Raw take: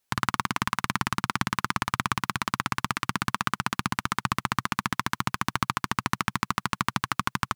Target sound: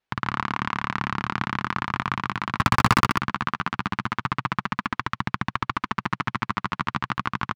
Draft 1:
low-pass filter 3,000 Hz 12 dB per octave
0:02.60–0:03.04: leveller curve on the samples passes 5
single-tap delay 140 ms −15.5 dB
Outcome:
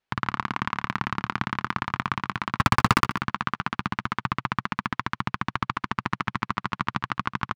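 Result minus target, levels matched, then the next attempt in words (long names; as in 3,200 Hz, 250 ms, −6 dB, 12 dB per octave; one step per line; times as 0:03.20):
echo-to-direct −11.5 dB
low-pass filter 3,000 Hz 12 dB per octave
0:02.60–0:03.04: leveller curve on the samples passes 5
single-tap delay 140 ms −4 dB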